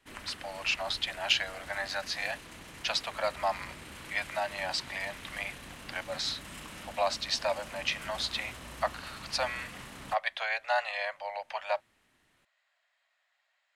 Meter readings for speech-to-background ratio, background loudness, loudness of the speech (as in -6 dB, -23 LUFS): 12.0 dB, -45.5 LUFS, -33.5 LUFS